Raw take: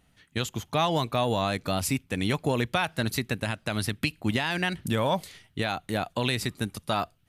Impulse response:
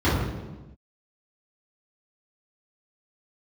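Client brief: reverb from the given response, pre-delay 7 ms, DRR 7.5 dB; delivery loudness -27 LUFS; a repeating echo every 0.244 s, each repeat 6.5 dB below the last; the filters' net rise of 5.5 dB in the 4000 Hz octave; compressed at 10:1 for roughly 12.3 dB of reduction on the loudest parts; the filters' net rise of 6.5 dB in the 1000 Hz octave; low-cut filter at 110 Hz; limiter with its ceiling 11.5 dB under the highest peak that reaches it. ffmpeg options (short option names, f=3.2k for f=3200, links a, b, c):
-filter_complex "[0:a]highpass=110,equalizer=f=1k:t=o:g=8,equalizer=f=4k:t=o:g=6,acompressor=threshold=-29dB:ratio=10,alimiter=limit=-23.5dB:level=0:latency=1,aecho=1:1:244|488|732|976|1220|1464:0.473|0.222|0.105|0.0491|0.0231|0.0109,asplit=2[a][b];[1:a]atrim=start_sample=2205,adelay=7[c];[b][c]afir=irnorm=-1:irlink=0,volume=-25.5dB[d];[a][d]amix=inputs=2:normalize=0,volume=7dB"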